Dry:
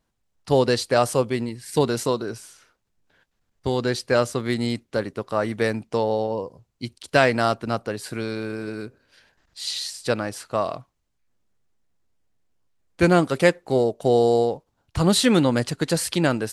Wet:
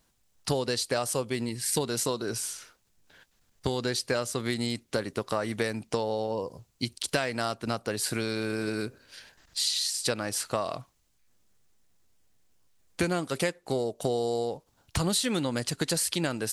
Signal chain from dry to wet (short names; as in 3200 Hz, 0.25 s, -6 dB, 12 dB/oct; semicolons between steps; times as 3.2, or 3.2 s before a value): high shelf 3200 Hz +10 dB; compressor 6:1, threshold -29 dBFS, peak gain reduction 18 dB; gain +3 dB